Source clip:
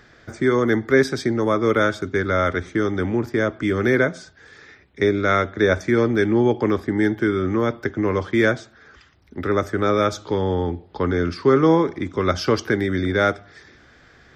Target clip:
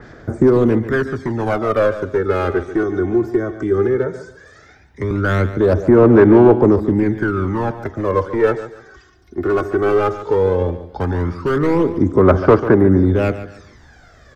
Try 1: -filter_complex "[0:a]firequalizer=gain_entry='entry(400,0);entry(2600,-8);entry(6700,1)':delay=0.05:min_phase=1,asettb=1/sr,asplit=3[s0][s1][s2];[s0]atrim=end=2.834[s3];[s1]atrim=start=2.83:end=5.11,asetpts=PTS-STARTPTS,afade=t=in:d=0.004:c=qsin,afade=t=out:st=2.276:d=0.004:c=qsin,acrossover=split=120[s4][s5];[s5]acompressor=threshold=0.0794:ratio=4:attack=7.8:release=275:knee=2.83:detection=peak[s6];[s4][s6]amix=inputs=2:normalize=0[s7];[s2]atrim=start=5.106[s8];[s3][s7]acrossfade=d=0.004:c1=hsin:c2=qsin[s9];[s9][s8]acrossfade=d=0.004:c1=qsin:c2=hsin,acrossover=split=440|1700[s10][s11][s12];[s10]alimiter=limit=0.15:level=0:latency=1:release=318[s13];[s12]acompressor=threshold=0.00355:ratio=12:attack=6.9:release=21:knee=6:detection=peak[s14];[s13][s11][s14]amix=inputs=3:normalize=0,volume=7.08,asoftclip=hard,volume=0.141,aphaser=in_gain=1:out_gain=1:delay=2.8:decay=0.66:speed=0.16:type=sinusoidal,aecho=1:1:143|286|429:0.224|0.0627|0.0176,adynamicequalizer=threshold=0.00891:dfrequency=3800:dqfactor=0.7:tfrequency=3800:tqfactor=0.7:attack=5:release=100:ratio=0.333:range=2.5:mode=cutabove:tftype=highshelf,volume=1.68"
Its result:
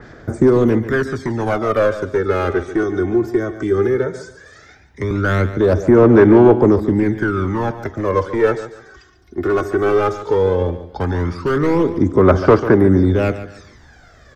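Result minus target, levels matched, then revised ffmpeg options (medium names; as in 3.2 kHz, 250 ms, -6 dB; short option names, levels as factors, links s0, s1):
compression: peak gain reduction -9.5 dB
-filter_complex "[0:a]firequalizer=gain_entry='entry(400,0);entry(2600,-8);entry(6700,1)':delay=0.05:min_phase=1,asettb=1/sr,asplit=3[s0][s1][s2];[s0]atrim=end=2.834[s3];[s1]atrim=start=2.83:end=5.11,asetpts=PTS-STARTPTS,afade=t=in:d=0.004:c=qsin,afade=t=out:st=2.276:d=0.004:c=qsin,acrossover=split=120[s4][s5];[s5]acompressor=threshold=0.0794:ratio=4:attack=7.8:release=275:knee=2.83:detection=peak[s6];[s4][s6]amix=inputs=2:normalize=0[s7];[s2]atrim=start=5.106[s8];[s3][s7]acrossfade=d=0.004:c1=hsin:c2=qsin[s9];[s9][s8]acrossfade=d=0.004:c1=qsin:c2=hsin,acrossover=split=440|1700[s10][s11][s12];[s10]alimiter=limit=0.15:level=0:latency=1:release=318[s13];[s12]acompressor=threshold=0.00106:ratio=12:attack=6.9:release=21:knee=6:detection=peak[s14];[s13][s11][s14]amix=inputs=3:normalize=0,volume=7.08,asoftclip=hard,volume=0.141,aphaser=in_gain=1:out_gain=1:delay=2.8:decay=0.66:speed=0.16:type=sinusoidal,aecho=1:1:143|286|429:0.224|0.0627|0.0176,adynamicequalizer=threshold=0.00891:dfrequency=3800:dqfactor=0.7:tfrequency=3800:tqfactor=0.7:attack=5:release=100:ratio=0.333:range=2.5:mode=cutabove:tftype=highshelf,volume=1.68"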